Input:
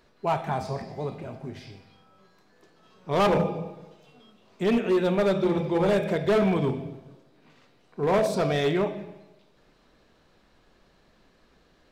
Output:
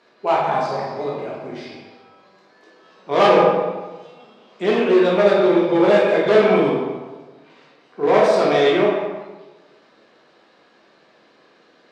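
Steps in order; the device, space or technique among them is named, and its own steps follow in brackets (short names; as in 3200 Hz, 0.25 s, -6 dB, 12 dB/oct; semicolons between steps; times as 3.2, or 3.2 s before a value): supermarket ceiling speaker (BPF 300–5600 Hz; reverb RT60 1.2 s, pre-delay 9 ms, DRR -3.5 dB); gain +4.5 dB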